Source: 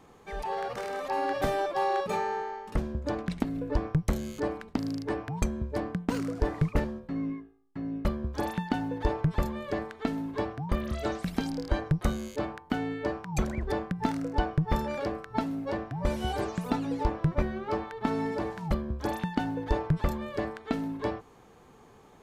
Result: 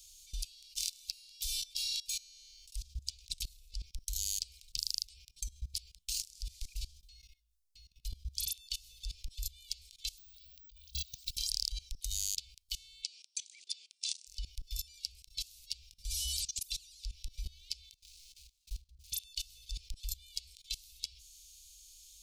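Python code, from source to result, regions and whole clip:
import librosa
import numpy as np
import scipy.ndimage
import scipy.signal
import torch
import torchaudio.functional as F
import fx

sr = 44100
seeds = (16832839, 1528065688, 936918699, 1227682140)

y = fx.chain(x, sr, fx.over_compress(threshold_db=-33.0, ratio=-0.5),
    fx.air_absorb(metres=82.0),
    fx.resample_bad(factor=2, down='none', up='hold'), at=(10.18, 11.37))
y = fx.chain(y, sr, fx.brickwall_bandpass(low_hz=230.0, high_hz=9800.0),
    fx.peak_eq(hz=2500.0, db=2.5, octaves=1.6),
    fx.band_squash(depth_pct=40), at=(13.02, 14.27))
y = fx.chain(y, sr, fx.median_filter(points=41),
    fx.level_steps(step_db=17), at=(17.93, 19.11))
y = scipy.signal.sosfilt(scipy.signal.cheby2(4, 50, [130.0, 1900.0], 'bandstop', fs=sr, output='sos'), y)
y = fx.high_shelf_res(y, sr, hz=1700.0, db=12.0, q=3.0)
y = fx.level_steps(y, sr, step_db=21)
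y = y * librosa.db_to_amplitude(6.0)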